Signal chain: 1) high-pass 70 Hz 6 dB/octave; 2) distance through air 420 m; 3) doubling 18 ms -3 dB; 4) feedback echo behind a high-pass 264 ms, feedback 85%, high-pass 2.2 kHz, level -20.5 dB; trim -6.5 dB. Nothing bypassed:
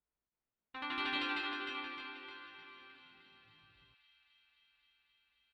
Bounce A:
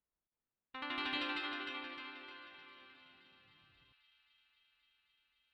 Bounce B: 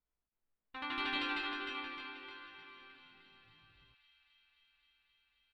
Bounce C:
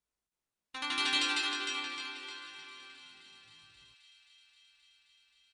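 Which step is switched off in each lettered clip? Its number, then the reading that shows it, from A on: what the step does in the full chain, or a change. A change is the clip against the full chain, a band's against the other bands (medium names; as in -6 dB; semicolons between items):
3, 1 kHz band -2.0 dB; 1, 125 Hz band +1.5 dB; 2, 4 kHz band +8.0 dB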